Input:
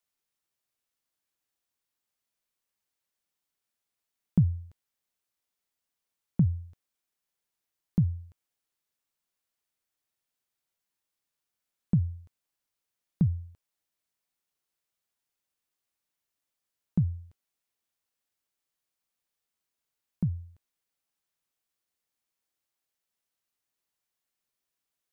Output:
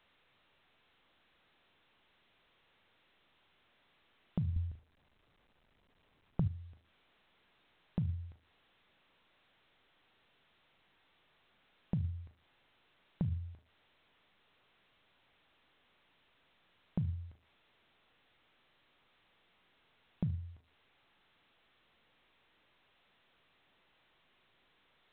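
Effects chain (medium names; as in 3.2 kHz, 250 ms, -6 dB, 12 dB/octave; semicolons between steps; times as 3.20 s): on a send: flutter echo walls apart 6.5 m, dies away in 0.23 s; on the sum: peak limiter -24.5 dBFS, peak gain reduction 11.5 dB; 4.56–6.48 s: tilt EQ -3.5 dB/octave; compression 5:1, threshold -37 dBFS, peak gain reduction 18 dB; trim +4.5 dB; A-law 64 kbps 8 kHz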